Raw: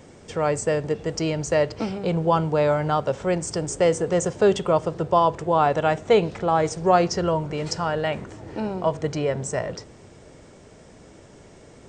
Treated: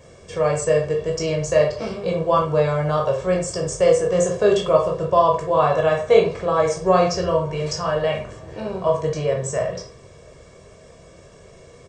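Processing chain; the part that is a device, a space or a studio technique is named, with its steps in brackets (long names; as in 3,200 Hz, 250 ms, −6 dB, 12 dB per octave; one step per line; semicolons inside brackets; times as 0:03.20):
microphone above a desk (comb filter 1.8 ms, depth 60%; convolution reverb RT60 0.40 s, pre-delay 12 ms, DRR −0.5 dB)
level −2.5 dB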